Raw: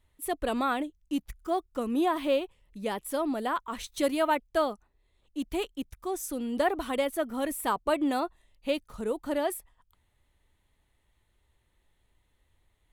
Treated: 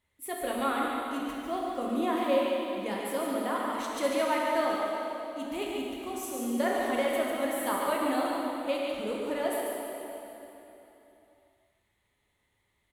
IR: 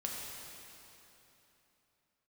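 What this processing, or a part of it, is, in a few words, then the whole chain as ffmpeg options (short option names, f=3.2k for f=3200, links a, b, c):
PA in a hall: -filter_complex "[0:a]highpass=f=170:p=1,equalizer=f=2.1k:t=o:w=0.22:g=6.5,aecho=1:1:144:0.531[a];[1:a]atrim=start_sample=2205[b];[a][b]afir=irnorm=-1:irlink=0,volume=-2.5dB"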